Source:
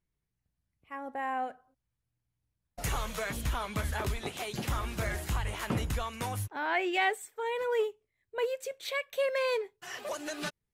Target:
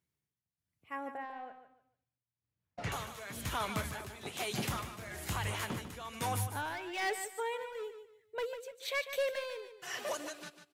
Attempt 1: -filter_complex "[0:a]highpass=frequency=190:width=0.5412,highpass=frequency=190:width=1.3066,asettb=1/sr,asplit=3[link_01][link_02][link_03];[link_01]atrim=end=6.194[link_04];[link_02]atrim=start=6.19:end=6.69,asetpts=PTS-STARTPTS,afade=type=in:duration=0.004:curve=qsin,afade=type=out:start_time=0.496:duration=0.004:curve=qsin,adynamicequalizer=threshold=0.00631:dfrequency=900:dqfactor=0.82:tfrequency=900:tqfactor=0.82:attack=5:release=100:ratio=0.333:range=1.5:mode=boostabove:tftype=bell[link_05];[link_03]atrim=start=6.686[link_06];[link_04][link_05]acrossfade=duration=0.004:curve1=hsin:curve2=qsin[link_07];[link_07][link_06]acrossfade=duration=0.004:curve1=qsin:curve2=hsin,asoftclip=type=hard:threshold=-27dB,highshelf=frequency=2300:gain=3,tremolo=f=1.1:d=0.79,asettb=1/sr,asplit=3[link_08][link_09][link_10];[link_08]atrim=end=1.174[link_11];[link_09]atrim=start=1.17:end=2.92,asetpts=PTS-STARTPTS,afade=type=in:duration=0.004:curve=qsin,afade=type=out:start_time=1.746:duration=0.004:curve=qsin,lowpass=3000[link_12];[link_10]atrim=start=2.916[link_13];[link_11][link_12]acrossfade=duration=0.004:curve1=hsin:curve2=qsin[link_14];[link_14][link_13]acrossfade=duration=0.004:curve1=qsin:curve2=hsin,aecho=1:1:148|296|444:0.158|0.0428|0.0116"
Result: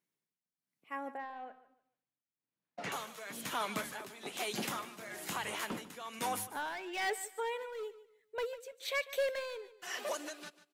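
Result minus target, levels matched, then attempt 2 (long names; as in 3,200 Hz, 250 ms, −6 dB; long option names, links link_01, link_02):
125 Hz band −13.0 dB; echo-to-direct −6 dB
-filter_complex "[0:a]highpass=frequency=82:width=0.5412,highpass=frequency=82:width=1.3066,asettb=1/sr,asplit=3[link_01][link_02][link_03];[link_01]atrim=end=6.194[link_04];[link_02]atrim=start=6.19:end=6.69,asetpts=PTS-STARTPTS,afade=type=in:duration=0.004:curve=qsin,afade=type=out:start_time=0.496:duration=0.004:curve=qsin,adynamicequalizer=threshold=0.00631:dfrequency=900:dqfactor=0.82:tfrequency=900:tqfactor=0.82:attack=5:release=100:ratio=0.333:range=1.5:mode=boostabove:tftype=bell[link_05];[link_03]atrim=start=6.686[link_06];[link_04][link_05]acrossfade=duration=0.004:curve1=hsin:curve2=qsin[link_07];[link_07][link_06]acrossfade=duration=0.004:curve1=qsin:curve2=hsin,asoftclip=type=hard:threshold=-27dB,highshelf=frequency=2300:gain=3,tremolo=f=1.1:d=0.79,asettb=1/sr,asplit=3[link_08][link_09][link_10];[link_08]atrim=end=1.174[link_11];[link_09]atrim=start=1.17:end=2.92,asetpts=PTS-STARTPTS,afade=type=in:duration=0.004:curve=qsin,afade=type=out:start_time=1.746:duration=0.004:curve=qsin,lowpass=3000[link_12];[link_10]atrim=start=2.916[link_13];[link_11][link_12]acrossfade=duration=0.004:curve1=hsin:curve2=qsin[link_14];[link_14][link_13]acrossfade=duration=0.004:curve1=qsin:curve2=hsin,aecho=1:1:148|296|444:0.316|0.0854|0.0231"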